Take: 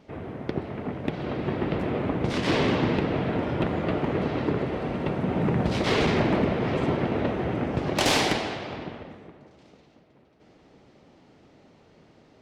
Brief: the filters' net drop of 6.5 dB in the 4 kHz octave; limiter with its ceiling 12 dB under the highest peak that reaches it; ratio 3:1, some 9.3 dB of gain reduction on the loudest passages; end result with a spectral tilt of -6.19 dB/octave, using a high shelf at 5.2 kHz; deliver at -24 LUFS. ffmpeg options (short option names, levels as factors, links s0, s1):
-af "equalizer=f=4000:t=o:g=-6.5,highshelf=f=5200:g=-5.5,acompressor=threshold=0.0224:ratio=3,volume=6.68,alimiter=limit=0.168:level=0:latency=1"